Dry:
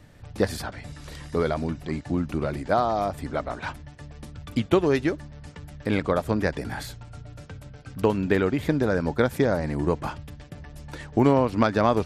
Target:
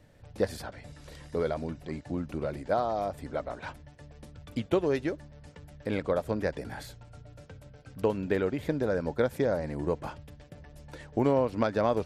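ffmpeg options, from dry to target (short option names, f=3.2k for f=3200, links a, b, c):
-af "equalizer=f=530:t=o:w=0.64:g=6,bandreject=f=1.2k:w=21,volume=-8dB"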